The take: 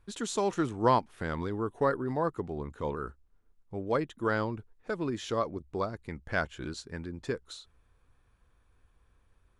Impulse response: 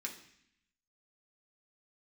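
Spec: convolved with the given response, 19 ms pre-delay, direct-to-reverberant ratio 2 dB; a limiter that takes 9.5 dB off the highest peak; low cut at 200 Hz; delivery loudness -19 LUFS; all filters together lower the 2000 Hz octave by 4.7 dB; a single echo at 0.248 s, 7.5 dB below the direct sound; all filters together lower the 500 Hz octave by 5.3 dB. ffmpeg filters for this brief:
-filter_complex "[0:a]highpass=200,equalizer=f=500:t=o:g=-6,equalizer=f=2k:t=o:g=-6.5,alimiter=limit=-23.5dB:level=0:latency=1,aecho=1:1:248:0.422,asplit=2[a][b];[1:a]atrim=start_sample=2205,adelay=19[c];[b][c]afir=irnorm=-1:irlink=0,volume=-1.5dB[d];[a][d]amix=inputs=2:normalize=0,volume=17.5dB"

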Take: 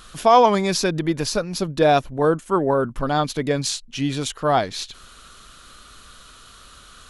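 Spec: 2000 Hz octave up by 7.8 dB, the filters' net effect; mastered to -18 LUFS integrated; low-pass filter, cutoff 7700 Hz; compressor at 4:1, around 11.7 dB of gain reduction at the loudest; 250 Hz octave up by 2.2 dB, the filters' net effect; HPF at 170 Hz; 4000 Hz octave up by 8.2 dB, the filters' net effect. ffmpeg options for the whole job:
-af "highpass=170,lowpass=7.7k,equalizer=f=250:t=o:g=4,equalizer=f=2k:t=o:g=8.5,equalizer=f=4k:t=o:g=8,acompressor=threshold=-21dB:ratio=4,volume=6.5dB"

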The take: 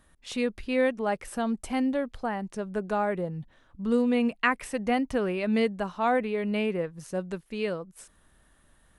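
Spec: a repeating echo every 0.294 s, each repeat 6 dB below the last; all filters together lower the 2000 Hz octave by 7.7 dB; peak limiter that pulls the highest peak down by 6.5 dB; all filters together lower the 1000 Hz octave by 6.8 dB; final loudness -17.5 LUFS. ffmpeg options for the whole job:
-af "equalizer=f=1k:t=o:g=-8.5,equalizer=f=2k:t=o:g=-7,alimiter=limit=-22.5dB:level=0:latency=1,aecho=1:1:294|588|882|1176|1470|1764:0.501|0.251|0.125|0.0626|0.0313|0.0157,volume=14dB"

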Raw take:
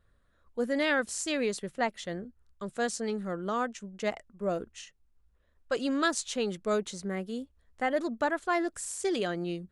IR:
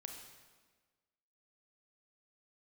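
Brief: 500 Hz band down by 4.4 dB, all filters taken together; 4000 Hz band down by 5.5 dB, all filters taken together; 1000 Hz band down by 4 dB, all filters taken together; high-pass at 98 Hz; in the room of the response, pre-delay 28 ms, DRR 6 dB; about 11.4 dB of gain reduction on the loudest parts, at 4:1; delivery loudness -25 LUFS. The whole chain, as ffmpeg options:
-filter_complex "[0:a]highpass=98,equalizer=f=500:t=o:g=-4.5,equalizer=f=1k:t=o:g=-3.5,equalizer=f=4k:t=o:g=-7,acompressor=threshold=-41dB:ratio=4,asplit=2[a][b];[1:a]atrim=start_sample=2205,adelay=28[c];[b][c]afir=irnorm=-1:irlink=0,volume=-2dB[d];[a][d]amix=inputs=2:normalize=0,volume=18dB"

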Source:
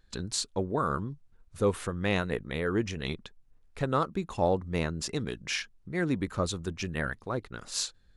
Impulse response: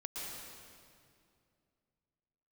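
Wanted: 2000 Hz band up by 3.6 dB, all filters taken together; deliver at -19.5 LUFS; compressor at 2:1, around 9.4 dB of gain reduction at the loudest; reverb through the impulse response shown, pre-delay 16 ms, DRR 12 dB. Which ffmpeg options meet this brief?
-filter_complex "[0:a]equalizer=f=2k:t=o:g=4.5,acompressor=threshold=-38dB:ratio=2,asplit=2[a][b];[1:a]atrim=start_sample=2205,adelay=16[c];[b][c]afir=irnorm=-1:irlink=0,volume=-12.5dB[d];[a][d]amix=inputs=2:normalize=0,volume=18dB"

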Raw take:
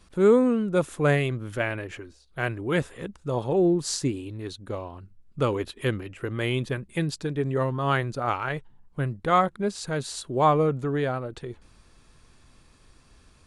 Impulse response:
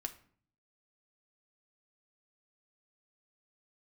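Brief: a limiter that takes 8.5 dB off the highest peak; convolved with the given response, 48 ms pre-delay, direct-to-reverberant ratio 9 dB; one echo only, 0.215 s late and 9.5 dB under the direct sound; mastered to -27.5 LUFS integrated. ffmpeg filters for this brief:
-filter_complex "[0:a]alimiter=limit=-17dB:level=0:latency=1,aecho=1:1:215:0.335,asplit=2[a][b];[1:a]atrim=start_sample=2205,adelay=48[c];[b][c]afir=irnorm=-1:irlink=0,volume=-7.5dB[d];[a][d]amix=inputs=2:normalize=0,volume=0.5dB"

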